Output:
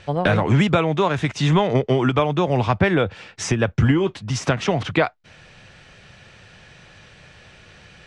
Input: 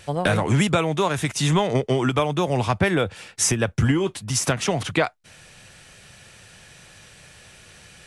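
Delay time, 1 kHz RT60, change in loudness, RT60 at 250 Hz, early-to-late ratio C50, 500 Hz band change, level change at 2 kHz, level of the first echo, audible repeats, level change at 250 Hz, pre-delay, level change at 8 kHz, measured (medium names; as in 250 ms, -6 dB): no echo, no reverb, +2.0 dB, no reverb, no reverb, +2.5 dB, +1.5 dB, no echo, no echo, +3.0 dB, no reverb, -9.0 dB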